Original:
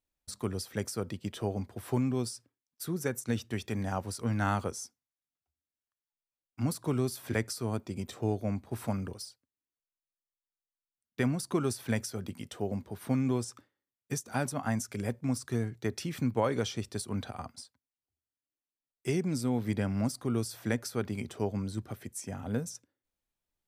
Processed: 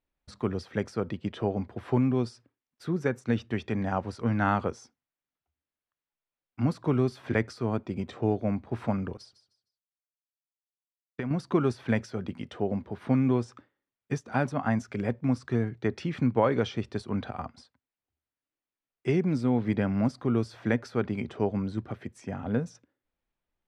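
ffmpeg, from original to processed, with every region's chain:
-filter_complex "[0:a]asettb=1/sr,asplit=3[s0][s1][s2];[s0]atrim=end=9.174[s3];[s1]atrim=start=9.17:end=11.31,asetpts=PTS-STARTPTS,afade=t=in:d=0.004:c=qsin,afade=t=out:st=2.136:d=0.004:c=qsin,agate=range=0.0224:threshold=0.00398:ratio=3:release=100:detection=peak,aecho=1:1:154|308|462:0.224|0.0604|0.0163,atrim=end_sample=94374,acompressor=threshold=0.0224:ratio=6:attack=3.2:release=140:knee=1:detection=peak[s4];[s2]atrim=start=11.306[s5];[s3][s4]acrossfade=d=0.004:c1=hsin:c2=qsin[s6];[s6][s5]acrossfade=d=0.004:c1=qsin:c2=hsin,lowpass=2700,equalizer=f=100:t=o:w=0.27:g=-5,volume=1.78"

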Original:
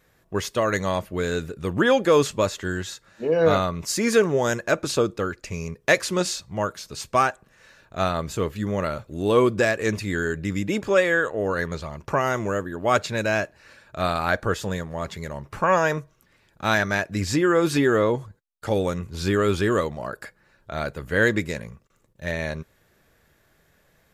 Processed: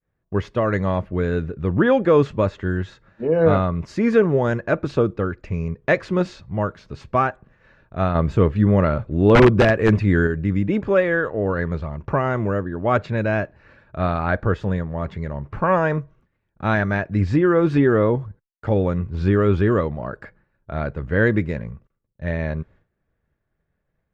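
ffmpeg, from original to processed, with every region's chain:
-filter_complex "[0:a]asettb=1/sr,asplit=3[s0][s1][s2];[s0]atrim=end=8.154[s3];[s1]atrim=start=8.15:end=10.27,asetpts=PTS-STARTPTS,afade=t=in:d=0.004:c=qsin,afade=t=out:st=2.116:d=0.004:c=qsin,acontrast=21,aeval=exprs='(mod(2.51*val(0)+1,2)-1)/2.51':c=same[s4];[s2]atrim=start=10.266[s5];[s3][s4]acrossfade=d=0.004:c1=hsin:c2=qsin[s6];[s6][s5]acrossfade=d=0.004:c1=qsin:c2=hsin,agate=range=0.0224:threshold=0.00316:ratio=3:detection=peak,lowpass=2100,lowshelf=f=250:g=9.5"

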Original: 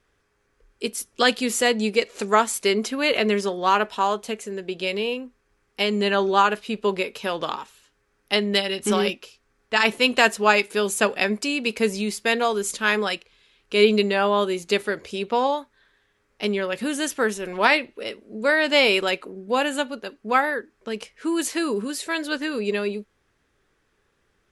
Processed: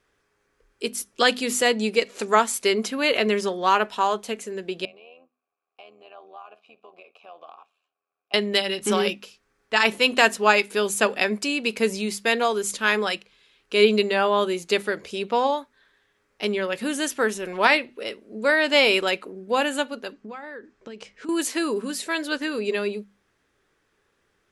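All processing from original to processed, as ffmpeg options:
-filter_complex "[0:a]asettb=1/sr,asplit=3[s0][s1][s2];[s0]atrim=end=4.854[s3];[s1]atrim=start=4.85:end=8.34,asetpts=PTS-STARTPTS,afade=t=in:d=0.004:c=qsin,afade=t=out:st=3.486:d=0.004:c=qsin,tremolo=f=83:d=0.667,acompressor=threshold=0.0355:ratio=6:attack=3.2:release=140:knee=1:detection=peak,asplit=3[s4][s5][s6];[s4]bandpass=f=730:t=q:w=8,volume=1[s7];[s5]bandpass=f=1090:t=q:w=8,volume=0.501[s8];[s6]bandpass=f=2440:t=q:w=8,volume=0.355[s9];[s7][s8][s9]amix=inputs=3:normalize=0[s10];[s2]atrim=start=8.336[s11];[s3][s10]acrossfade=d=0.004:c1=hsin:c2=qsin[s12];[s12][s11]acrossfade=d=0.004:c1=qsin:c2=hsin,asettb=1/sr,asplit=3[s13][s14][s15];[s13]atrim=end=20.124[s16];[s14]atrim=start=20.12:end=21.29,asetpts=PTS-STARTPTS,afade=t=in:d=0.004:c=qsin,afade=t=out:st=1.166:d=0.004:c=qsin,lowpass=f=7900:w=0.5412,lowpass=f=7900:w=1.3066,lowshelf=f=430:g=5,acompressor=threshold=0.0224:ratio=12:attack=3.2:release=140:knee=1:detection=peak[s17];[s15]atrim=start=21.286[s18];[s16][s17]acrossfade=d=0.004:c1=hsin:c2=qsin[s19];[s19][s18]acrossfade=d=0.004:c1=qsin:c2=hsin,lowshelf=f=92:g=-7.5,bandreject=f=50:t=h:w=6,bandreject=f=100:t=h:w=6,bandreject=f=150:t=h:w=6,bandreject=f=200:t=h:w=6,bandreject=f=250:t=h:w=6"

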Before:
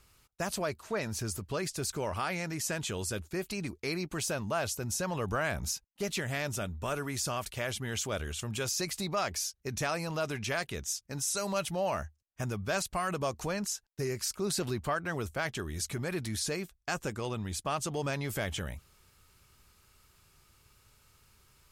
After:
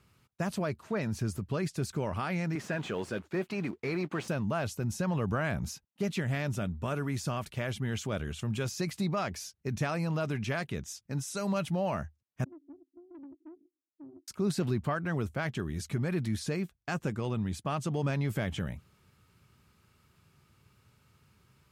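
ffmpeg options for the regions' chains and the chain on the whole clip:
-filter_complex "[0:a]asettb=1/sr,asplit=3[s0][s1][s2];[s0]atrim=end=2.554[s3];[s1]atrim=start=2.55:end=4.28,asetpts=PTS-STARTPTS,afade=t=in:d=0.004:c=qsin,afade=t=out:st=1.726:d=0.004:c=qsin,highpass=f=210:p=1,acrusher=bits=4:mode=log:mix=0:aa=0.000001,asplit=2[s4][s5];[s5]highpass=f=720:p=1,volume=7.08,asoftclip=type=tanh:threshold=0.0944[s6];[s4][s6]amix=inputs=2:normalize=0,lowpass=f=1300:p=1,volume=0.501[s7];[s2]atrim=start=4.276[s8];[s3][s7]acrossfade=d=0.004:c1=hsin:c2=qsin[s9];[s9][s8]acrossfade=d=0.004:c1=qsin:c2=hsin,asettb=1/sr,asplit=3[s10][s11][s12];[s10]atrim=end=12.444[s13];[s11]atrim=start=12.44:end=14.28,asetpts=PTS-STARTPTS,afade=t=in:d=0.004:c=qsin,afade=t=out:st=1.836:d=0.004:c=qsin,asuperpass=centerf=310:order=12:qfactor=3.4,aeval=exprs='(tanh(224*val(0)+0.45)-tanh(0.45))/224':c=same[s14];[s12]atrim=start=14.276[s15];[s13][s14]acrossfade=d=0.004:c1=hsin:c2=qsin[s16];[s16][s15]acrossfade=d=0.004:c1=qsin:c2=hsin,highpass=160,bass=f=250:g=14,treble=f=4000:g=-8,volume=0.841"

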